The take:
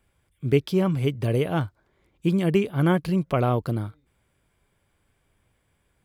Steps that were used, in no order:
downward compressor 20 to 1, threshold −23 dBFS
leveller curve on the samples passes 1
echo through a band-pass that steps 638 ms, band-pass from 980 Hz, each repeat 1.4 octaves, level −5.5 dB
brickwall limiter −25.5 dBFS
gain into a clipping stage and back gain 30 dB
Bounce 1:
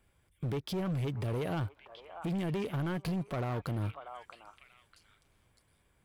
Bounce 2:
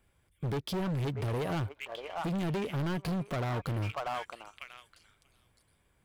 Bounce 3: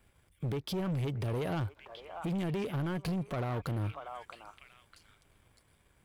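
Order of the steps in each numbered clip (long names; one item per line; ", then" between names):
leveller curve on the samples, then downward compressor, then brickwall limiter, then echo through a band-pass that steps, then gain into a clipping stage and back
echo through a band-pass that steps, then leveller curve on the samples, then downward compressor, then gain into a clipping stage and back, then brickwall limiter
downward compressor, then brickwall limiter, then echo through a band-pass that steps, then gain into a clipping stage and back, then leveller curve on the samples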